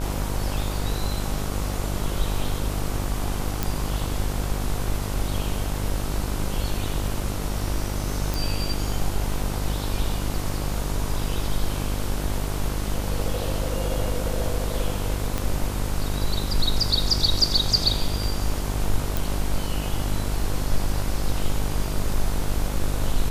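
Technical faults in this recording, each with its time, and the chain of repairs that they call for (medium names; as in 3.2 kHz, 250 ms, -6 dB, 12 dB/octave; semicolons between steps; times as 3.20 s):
buzz 50 Hz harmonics 31 -28 dBFS
3.63 s: pop
8.34 s: pop
15.38 s: pop
19.17 s: pop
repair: de-click; de-hum 50 Hz, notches 31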